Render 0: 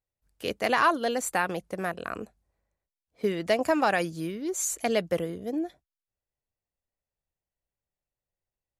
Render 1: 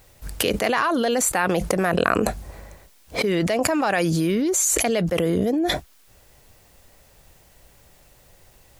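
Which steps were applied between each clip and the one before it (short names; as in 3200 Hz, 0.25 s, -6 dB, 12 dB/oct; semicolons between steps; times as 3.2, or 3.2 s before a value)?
fast leveller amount 100%; gain -2 dB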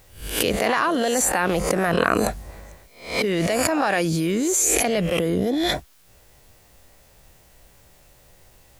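spectral swells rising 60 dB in 0.46 s; gain -1.5 dB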